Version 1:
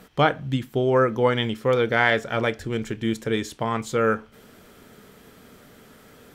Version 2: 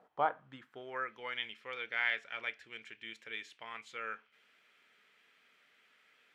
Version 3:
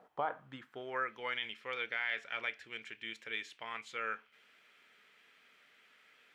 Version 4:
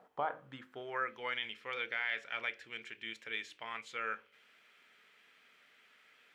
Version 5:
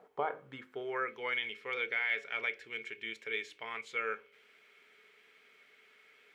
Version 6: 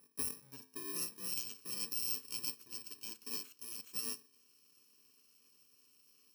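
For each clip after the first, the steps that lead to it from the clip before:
band-pass filter sweep 720 Hz → 2,400 Hz, 0:00.01–0:01.17; level −6.5 dB
brickwall limiter −27 dBFS, peak gain reduction 10 dB; level +3 dB
hum removal 51.26 Hz, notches 11
hollow resonant body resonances 420/2,200 Hz, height 13 dB, ringing for 60 ms
samples in bit-reversed order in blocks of 64 samples; level −4.5 dB

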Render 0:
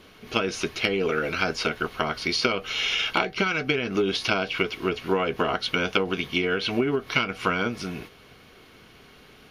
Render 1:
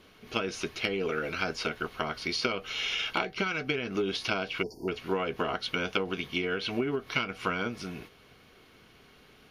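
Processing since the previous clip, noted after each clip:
time-frequency box erased 0:04.63–0:04.88, 990–4,400 Hz
level −6 dB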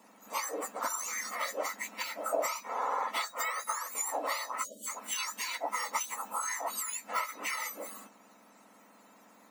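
frequency axis turned over on the octave scale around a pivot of 1,700 Hz
surface crackle 160 per second −66 dBFS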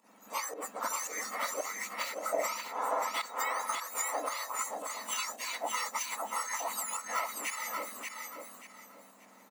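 fake sidechain pumping 112 BPM, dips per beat 1, −14 dB, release 142 ms
repeating echo 584 ms, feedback 28%, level −4.5 dB
level −1 dB

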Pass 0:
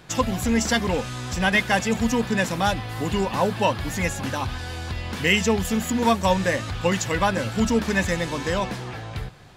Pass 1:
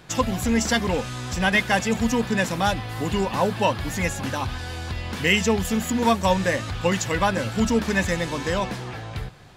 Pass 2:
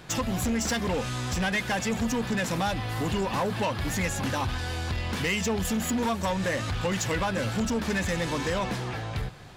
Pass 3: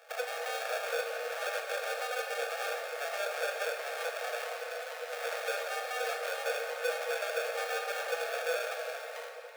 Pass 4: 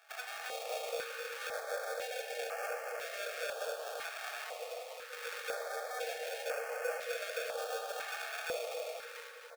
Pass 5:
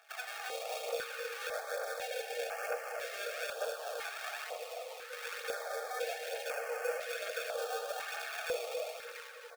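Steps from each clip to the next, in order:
no processing that can be heard
downward compressor, threshold −21 dBFS, peak gain reduction 7.5 dB; soft clipping −23.5 dBFS, distortion −12 dB; level +1.5 dB
sample-rate reduction 1,000 Hz, jitter 0%; Chebyshev high-pass with heavy ripple 460 Hz, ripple 6 dB; convolution reverb RT60 3.2 s, pre-delay 14 ms, DRR 2.5 dB
single-tap delay 260 ms −6.5 dB; notch on a step sequencer 2 Hz 510–3,700 Hz; level −3.5 dB
phase shifter 1.1 Hz, delay 2.7 ms, feedback 39%

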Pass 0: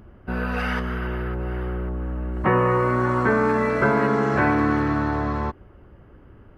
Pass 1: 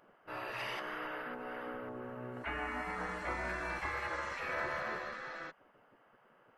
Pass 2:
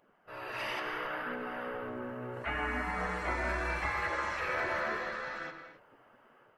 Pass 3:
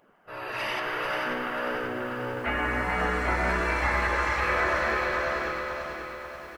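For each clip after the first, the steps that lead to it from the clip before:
gate on every frequency bin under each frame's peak −15 dB weak; level −6 dB
automatic gain control gain up to 7.5 dB; flanger 0.73 Hz, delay 0.3 ms, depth 3.2 ms, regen −50%; convolution reverb, pre-delay 3 ms, DRR 6 dB
single-tap delay 441 ms −5.5 dB; feedback echo at a low word length 538 ms, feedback 55%, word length 10 bits, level −8 dB; level +6 dB

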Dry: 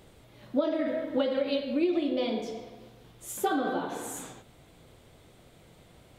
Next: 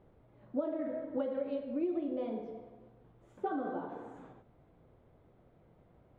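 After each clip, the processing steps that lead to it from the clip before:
low-pass filter 1,200 Hz 12 dB per octave
level −7 dB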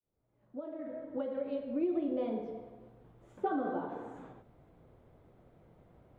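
fade in at the beginning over 2.05 s
level +2.5 dB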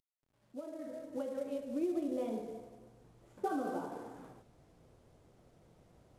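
variable-slope delta modulation 64 kbit/s
level −2.5 dB

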